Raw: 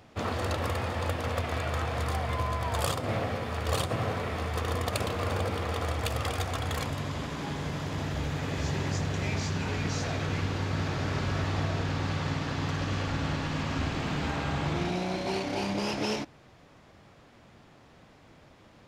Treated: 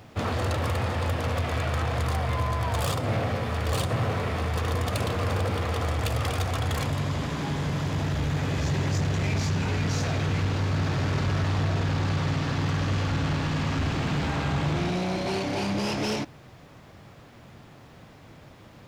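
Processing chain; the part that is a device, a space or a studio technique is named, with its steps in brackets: open-reel tape (soft clip -28 dBFS, distortion -13 dB; bell 120 Hz +5 dB 1.04 oct; white noise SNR 46 dB); gain +5 dB

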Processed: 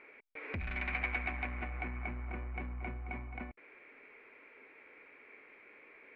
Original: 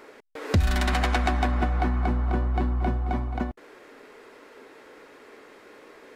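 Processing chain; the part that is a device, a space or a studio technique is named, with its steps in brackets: overdriven synthesiser ladder filter (soft clip -21 dBFS, distortion -15 dB; ladder low-pass 2400 Hz, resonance 85%); gain -1.5 dB

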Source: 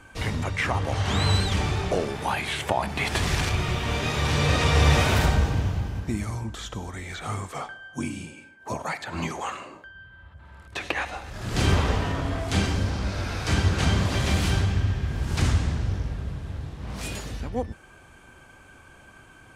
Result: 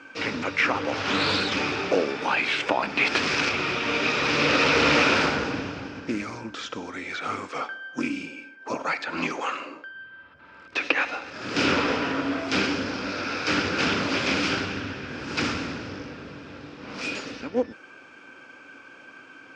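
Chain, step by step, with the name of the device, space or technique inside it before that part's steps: full-range speaker at full volume (Doppler distortion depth 0.54 ms; speaker cabinet 250–6200 Hz, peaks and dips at 280 Hz +10 dB, 500 Hz +6 dB, 720 Hz -3 dB, 1400 Hz +8 dB, 2500 Hz +9 dB, 5100 Hz +7 dB)

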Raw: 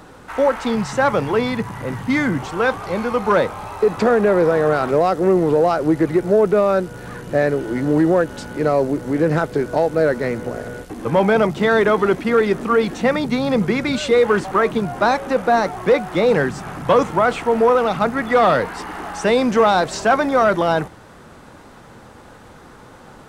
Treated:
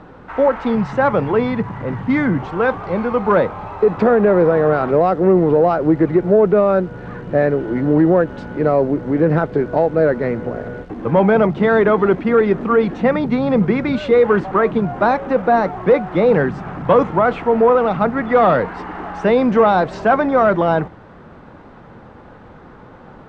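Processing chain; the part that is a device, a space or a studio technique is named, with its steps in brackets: phone in a pocket (LPF 3400 Hz 12 dB/oct; bell 180 Hz +2.5 dB 0.34 oct; high shelf 2200 Hz -9 dB); gain +2.5 dB

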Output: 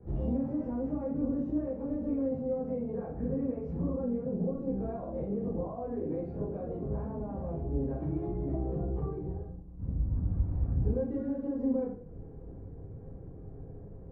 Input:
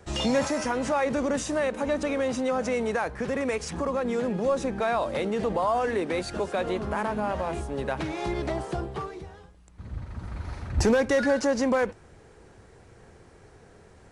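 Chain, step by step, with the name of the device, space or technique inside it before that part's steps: 11.11–11.54 resonant high shelf 4800 Hz -11 dB, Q 3; television next door (compressor 6:1, threshold -35 dBFS, peak gain reduction 15.5 dB; LPF 320 Hz 12 dB/oct; reverb RT60 0.55 s, pre-delay 13 ms, DRR -8.5 dB)

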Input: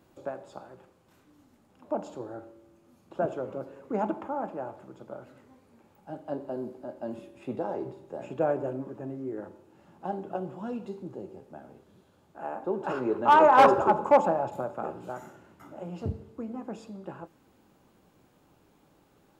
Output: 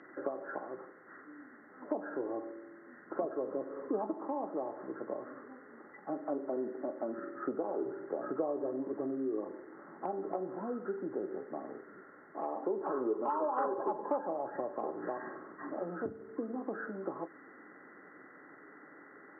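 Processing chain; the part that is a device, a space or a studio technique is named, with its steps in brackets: hearing aid with frequency lowering (nonlinear frequency compression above 1000 Hz 4:1; compressor 4:1, threshold -40 dBFS, peak gain reduction 22.5 dB; speaker cabinet 290–6500 Hz, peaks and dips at 290 Hz +7 dB, 420 Hz +5 dB, 1000 Hz -5 dB, 1400 Hz +9 dB, 2100 Hz +4 dB, 3100 Hz +9 dB); gain +5 dB

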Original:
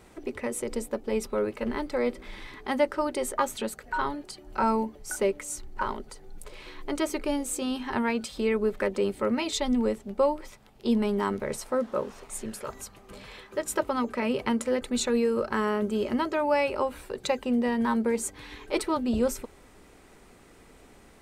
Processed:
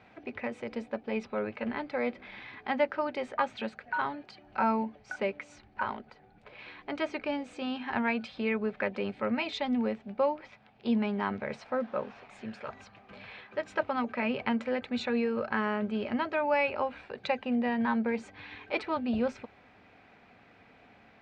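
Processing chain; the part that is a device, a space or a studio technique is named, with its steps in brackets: guitar cabinet (speaker cabinet 97–4300 Hz, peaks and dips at 100 Hz +6 dB, 220 Hz +3 dB, 370 Hz -7 dB, 730 Hz +8 dB, 1600 Hz +6 dB, 2400 Hz +8 dB); 6.01–6.59 high shelf 4500 Hz -10 dB; gain -5 dB

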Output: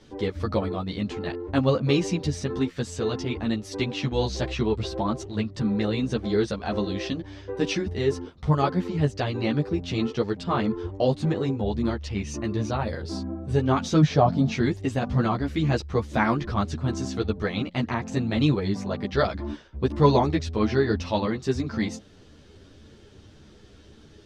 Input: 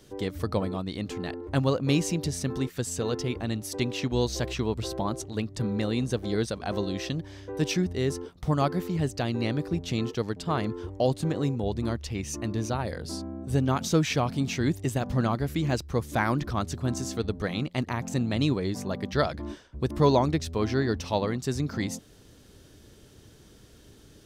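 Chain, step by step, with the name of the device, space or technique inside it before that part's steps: 14.01–14.52 fifteen-band EQ 160 Hz +8 dB, 630 Hz +8 dB, 2500 Hz -11 dB, 10000 Hz -12 dB; string-machine ensemble chorus (ensemble effect; LPF 4700 Hz 12 dB/oct); gain +6 dB

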